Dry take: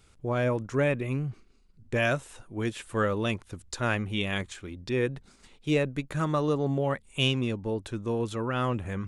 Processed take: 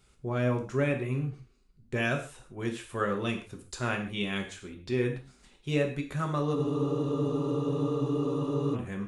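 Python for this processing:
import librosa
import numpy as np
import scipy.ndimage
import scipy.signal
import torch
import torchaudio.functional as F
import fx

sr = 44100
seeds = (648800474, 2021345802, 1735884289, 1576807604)

y = fx.rev_gated(x, sr, seeds[0], gate_ms=170, shape='falling', drr_db=2.5)
y = fx.spec_freeze(y, sr, seeds[1], at_s=6.57, hold_s=2.17)
y = F.gain(torch.from_numpy(y), -4.5).numpy()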